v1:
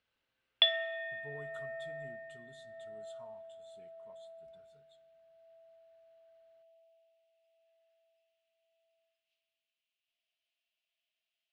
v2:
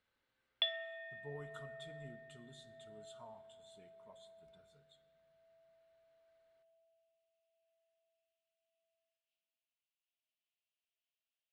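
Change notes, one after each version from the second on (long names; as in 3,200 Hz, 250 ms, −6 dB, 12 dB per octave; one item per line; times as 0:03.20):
speech: send +6.0 dB
background −9.0 dB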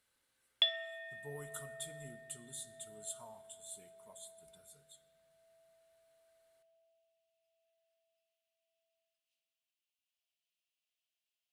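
master: remove high-frequency loss of the air 210 metres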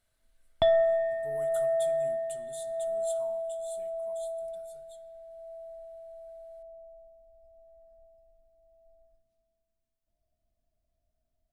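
background: remove high-pass with resonance 2,800 Hz, resonance Q 4.5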